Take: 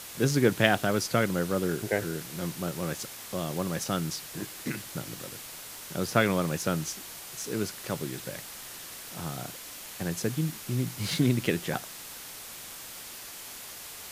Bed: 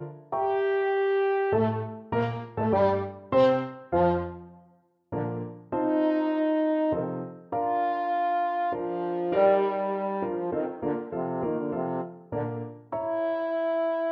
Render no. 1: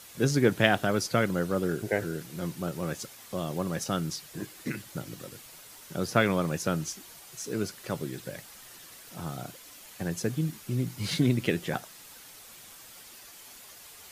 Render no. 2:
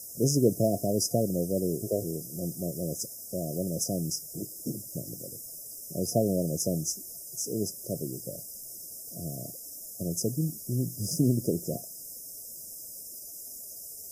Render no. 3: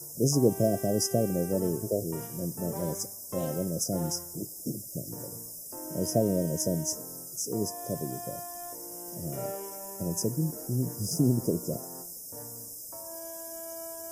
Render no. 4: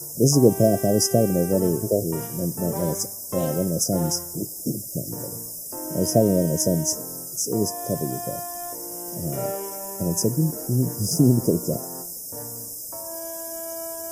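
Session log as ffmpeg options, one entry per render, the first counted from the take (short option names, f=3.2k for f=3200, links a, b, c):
-af "afftdn=nr=8:nf=-43"
-af "highshelf=f=6.1k:g=10.5,afftfilt=real='re*(1-between(b*sr/4096,710,4900))':imag='im*(1-between(b*sr/4096,710,4900))':win_size=4096:overlap=0.75"
-filter_complex "[1:a]volume=-16.5dB[a];[0:a][a]amix=inputs=2:normalize=0"
-af "volume=7.5dB"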